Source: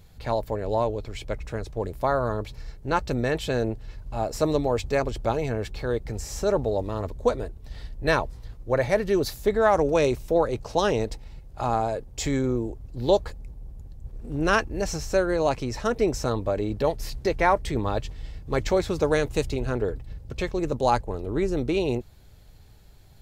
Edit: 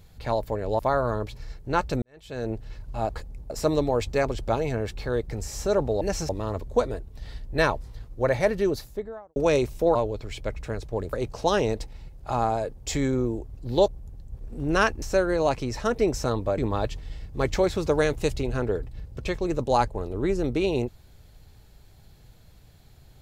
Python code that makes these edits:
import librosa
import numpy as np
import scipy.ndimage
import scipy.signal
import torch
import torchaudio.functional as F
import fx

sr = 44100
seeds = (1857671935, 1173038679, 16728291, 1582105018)

y = fx.studio_fade_out(x, sr, start_s=8.94, length_s=0.91)
y = fx.edit(y, sr, fx.move(start_s=0.79, length_s=1.18, to_s=10.44),
    fx.fade_in_span(start_s=3.2, length_s=0.55, curve='qua'),
    fx.move(start_s=13.19, length_s=0.41, to_s=4.27),
    fx.move(start_s=14.74, length_s=0.28, to_s=6.78),
    fx.cut(start_s=16.58, length_s=1.13), tone=tone)